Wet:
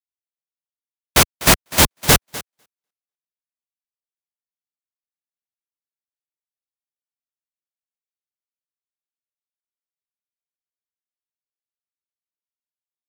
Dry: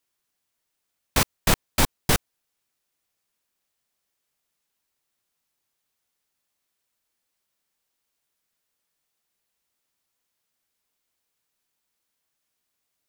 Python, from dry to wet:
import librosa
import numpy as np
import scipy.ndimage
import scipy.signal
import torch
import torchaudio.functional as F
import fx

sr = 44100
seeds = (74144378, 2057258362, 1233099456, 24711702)

y = scipy.signal.sosfilt(scipy.signal.butter(2, 47.0, 'highpass', fs=sr, output='sos'), x)
y = fx.fold_sine(y, sr, drive_db=12, ceiling_db=-5.5)
y = fx.echo_thinned(y, sr, ms=249, feedback_pct=25, hz=190.0, wet_db=-6.5)
y = fx.upward_expand(y, sr, threshold_db=-39.0, expansion=2.5)